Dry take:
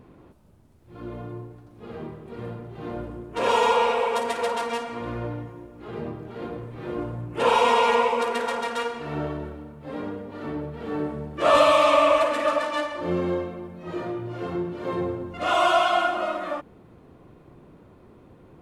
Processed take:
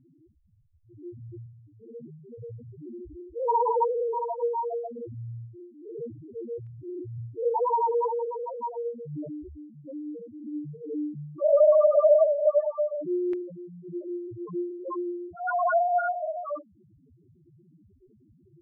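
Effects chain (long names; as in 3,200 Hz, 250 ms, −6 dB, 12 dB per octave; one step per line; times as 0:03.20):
spectral peaks only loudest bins 1
auto-filter low-pass saw down 0.15 Hz 550–2,100 Hz
level +3 dB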